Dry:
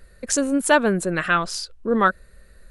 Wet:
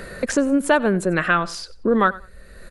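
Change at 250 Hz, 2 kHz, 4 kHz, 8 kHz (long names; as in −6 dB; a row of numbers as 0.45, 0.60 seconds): +2.5, +0.5, −2.5, −6.5 decibels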